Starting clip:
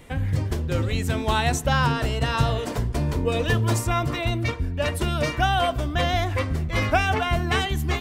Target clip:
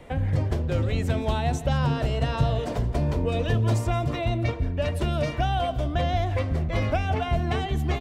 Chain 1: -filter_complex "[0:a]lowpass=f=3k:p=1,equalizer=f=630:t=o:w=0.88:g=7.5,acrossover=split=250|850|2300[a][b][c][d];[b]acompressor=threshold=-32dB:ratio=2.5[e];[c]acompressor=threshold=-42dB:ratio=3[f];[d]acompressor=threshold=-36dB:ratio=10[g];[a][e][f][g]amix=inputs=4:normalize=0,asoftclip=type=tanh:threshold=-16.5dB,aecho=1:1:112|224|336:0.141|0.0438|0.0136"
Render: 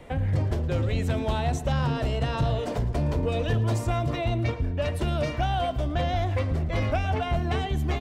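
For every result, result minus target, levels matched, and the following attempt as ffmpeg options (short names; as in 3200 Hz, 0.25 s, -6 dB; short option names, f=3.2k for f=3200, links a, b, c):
soft clip: distortion +11 dB; echo 59 ms early
-filter_complex "[0:a]lowpass=f=3k:p=1,equalizer=f=630:t=o:w=0.88:g=7.5,acrossover=split=250|850|2300[a][b][c][d];[b]acompressor=threshold=-32dB:ratio=2.5[e];[c]acompressor=threshold=-42dB:ratio=3[f];[d]acompressor=threshold=-36dB:ratio=10[g];[a][e][f][g]amix=inputs=4:normalize=0,asoftclip=type=tanh:threshold=-9dB,aecho=1:1:112|224|336:0.141|0.0438|0.0136"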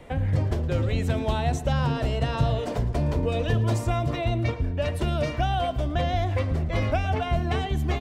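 echo 59 ms early
-filter_complex "[0:a]lowpass=f=3k:p=1,equalizer=f=630:t=o:w=0.88:g=7.5,acrossover=split=250|850|2300[a][b][c][d];[b]acompressor=threshold=-32dB:ratio=2.5[e];[c]acompressor=threshold=-42dB:ratio=3[f];[d]acompressor=threshold=-36dB:ratio=10[g];[a][e][f][g]amix=inputs=4:normalize=0,asoftclip=type=tanh:threshold=-9dB,aecho=1:1:171|342|513:0.141|0.0438|0.0136"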